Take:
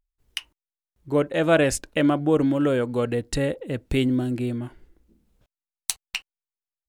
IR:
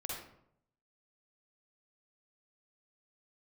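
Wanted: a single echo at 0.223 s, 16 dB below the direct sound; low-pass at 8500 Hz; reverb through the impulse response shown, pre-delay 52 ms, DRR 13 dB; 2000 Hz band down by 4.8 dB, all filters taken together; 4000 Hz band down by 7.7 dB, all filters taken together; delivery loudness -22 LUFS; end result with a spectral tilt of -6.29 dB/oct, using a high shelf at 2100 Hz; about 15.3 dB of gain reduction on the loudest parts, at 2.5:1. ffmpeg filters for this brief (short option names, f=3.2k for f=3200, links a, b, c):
-filter_complex "[0:a]lowpass=8.5k,equalizer=f=2k:t=o:g=-3,highshelf=f=2.1k:g=-3.5,equalizer=f=4k:t=o:g=-6,acompressor=threshold=-40dB:ratio=2.5,aecho=1:1:223:0.158,asplit=2[a][b];[1:a]atrim=start_sample=2205,adelay=52[c];[b][c]afir=irnorm=-1:irlink=0,volume=-13.5dB[d];[a][d]amix=inputs=2:normalize=0,volume=16dB"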